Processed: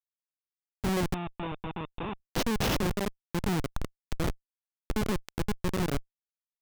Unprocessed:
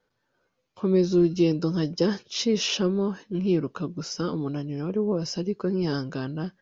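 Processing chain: coarse spectral quantiser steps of 30 dB; Schmitt trigger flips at -23.5 dBFS; 1.14–2.20 s: rippled Chebyshev low-pass 3.7 kHz, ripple 9 dB

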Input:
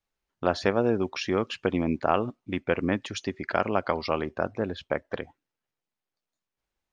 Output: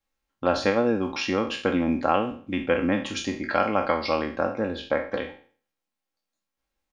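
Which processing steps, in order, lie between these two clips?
spectral sustain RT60 0.45 s; comb 3.7 ms, depth 51%

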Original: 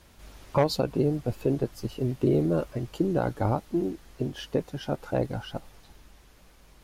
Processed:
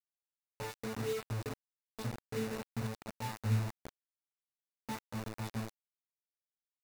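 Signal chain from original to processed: random holes in the spectrogram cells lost 69%; hum notches 50/100/150/200/250/300/350/400/450 Hz; feedback echo behind a high-pass 429 ms, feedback 67%, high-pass 2.5 kHz, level -6.5 dB; compression 10:1, threshold -29 dBFS, peak gain reduction 11 dB; dynamic bell 460 Hz, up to -6 dB, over -50 dBFS, Q 3.2; high-pass 110 Hz 24 dB/octave; tone controls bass 0 dB, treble +12 dB; pitch-class resonator A, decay 0.56 s; bit crusher 9-bit; band-stop 3.2 kHz, Q 9.3; trim +14 dB

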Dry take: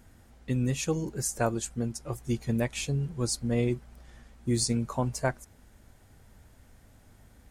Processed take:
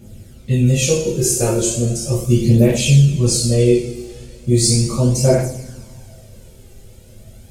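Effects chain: spectral sustain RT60 0.30 s; high-order bell 1.2 kHz -12 dB; in parallel at -2.5 dB: peak limiter -22 dBFS, peak gain reduction 7 dB; on the sum: two-slope reverb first 0.61 s, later 2.7 s, from -18 dB, DRR -8.5 dB; phaser 0.37 Hz, delay 2.6 ms, feedback 44%

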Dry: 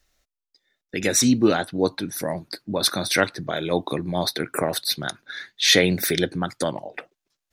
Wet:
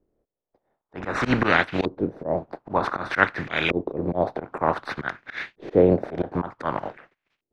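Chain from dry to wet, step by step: spectral contrast reduction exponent 0.44; LFO low-pass saw up 0.54 Hz 360–2700 Hz; slow attack 108 ms; trim +2.5 dB

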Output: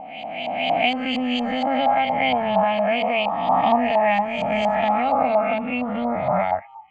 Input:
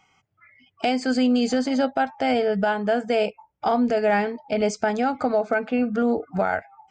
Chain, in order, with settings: reverse spectral sustain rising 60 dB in 2.41 s; LFO low-pass saw up 4.3 Hz 840–4500 Hz; static phaser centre 1.5 kHz, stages 6

